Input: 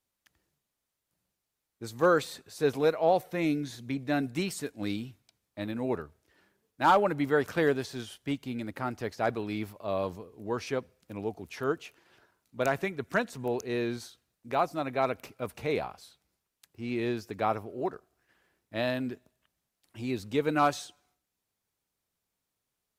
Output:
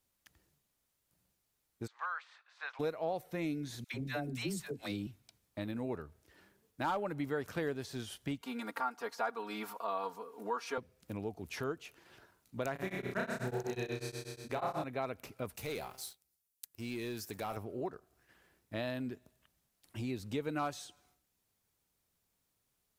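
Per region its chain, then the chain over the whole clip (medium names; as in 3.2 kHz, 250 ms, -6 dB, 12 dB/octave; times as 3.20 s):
1.86–2.79 s: spectral peaks clipped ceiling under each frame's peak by 13 dB + high-pass 1.1 kHz 24 dB/octave + tape spacing loss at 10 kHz 44 dB
3.84–5.07 s: band-stop 280 Hz, Q 8.5 + phase dispersion lows, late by 103 ms, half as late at 580 Hz
8.41–10.78 s: high-pass 400 Hz + high-order bell 1.1 kHz +9.5 dB 1.1 oct + comb 4.3 ms, depth 91%
12.72–14.84 s: flutter echo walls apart 5.5 m, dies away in 1.4 s + tremolo of two beating tones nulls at 8.2 Hz
15.56–17.57 s: pre-emphasis filter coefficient 0.8 + de-hum 129.8 Hz, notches 16 + waveshaping leveller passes 2
whole clip: bass shelf 180 Hz +5 dB; compression 2.5:1, threshold -41 dBFS; treble shelf 7.7 kHz +4 dB; trim +1.5 dB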